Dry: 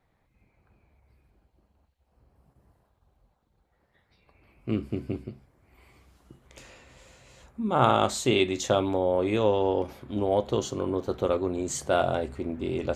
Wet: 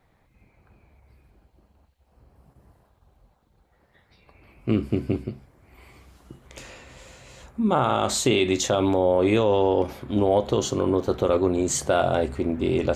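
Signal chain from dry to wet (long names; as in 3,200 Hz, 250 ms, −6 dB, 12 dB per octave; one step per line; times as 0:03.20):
boost into a limiter +15.5 dB
level −8.5 dB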